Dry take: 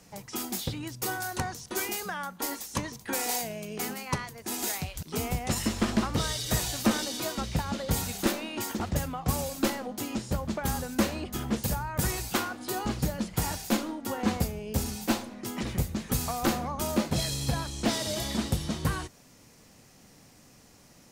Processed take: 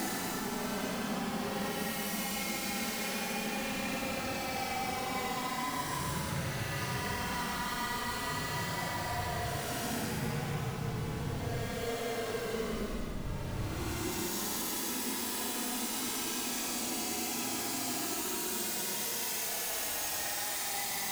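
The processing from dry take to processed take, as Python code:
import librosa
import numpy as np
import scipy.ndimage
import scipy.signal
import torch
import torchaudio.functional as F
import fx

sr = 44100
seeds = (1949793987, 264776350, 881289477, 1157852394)

y = fx.schmitt(x, sr, flips_db=-46.0)
y = fx.paulstretch(y, sr, seeds[0], factor=24.0, window_s=0.05, from_s=3.88)
y = y * librosa.db_to_amplitude(-4.0)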